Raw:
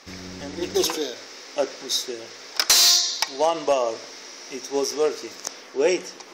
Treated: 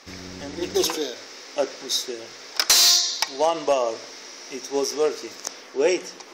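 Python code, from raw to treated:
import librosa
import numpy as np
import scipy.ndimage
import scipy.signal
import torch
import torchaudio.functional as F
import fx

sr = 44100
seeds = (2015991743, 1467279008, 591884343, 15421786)

y = fx.hum_notches(x, sr, base_hz=60, count=3)
y = fx.buffer_glitch(y, sr, at_s=(2.29,), block=1024, repeats=1)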